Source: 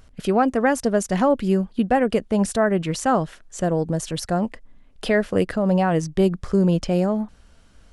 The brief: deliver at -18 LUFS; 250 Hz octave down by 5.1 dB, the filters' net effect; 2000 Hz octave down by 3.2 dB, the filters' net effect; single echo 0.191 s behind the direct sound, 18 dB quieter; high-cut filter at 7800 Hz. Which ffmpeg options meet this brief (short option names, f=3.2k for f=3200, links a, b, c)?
-af "lowpass=7.8k,equalizer=f=250:t=o:g=-7.5,equalizer=f=2k:t=o:g=-4,aecho=1:1:191:0.126,volume=6.5dB"